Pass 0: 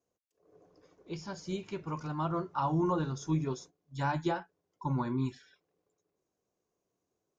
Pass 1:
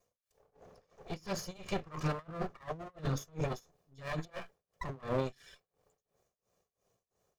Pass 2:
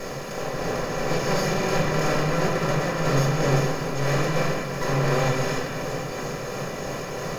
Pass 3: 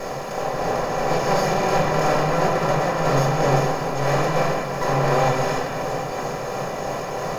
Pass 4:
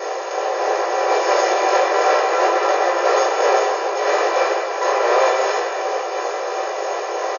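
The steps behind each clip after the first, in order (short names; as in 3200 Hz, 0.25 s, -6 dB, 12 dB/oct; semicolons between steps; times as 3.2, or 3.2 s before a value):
minimum comb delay 1.7 ms; negative-ratio compressor -38 dBFS, ratio -0.5; tremolo 2.9 Hz, depth 94%; gain +5.5 dB
per-bin compression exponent 0.2; low shelf 380 Hz -4.5 dB; reverb RT60 1.6 s, pre-delay 3 ms, DRR -6.5 dB
bell 790 Hz +9.5 dB 0.98 oct
FFT band-pass 320–6900 Hz; doubler 17 ms -5.5 dB; gain +3.5 dB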